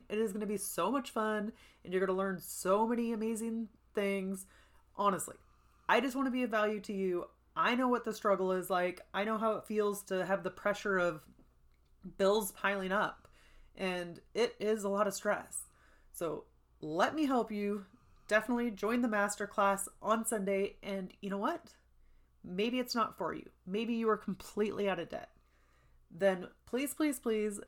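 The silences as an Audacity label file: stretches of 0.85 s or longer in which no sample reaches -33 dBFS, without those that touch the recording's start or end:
11.120000	12.200000	silence
21.560000	22.580000	silence
25.190000	26.220000	silence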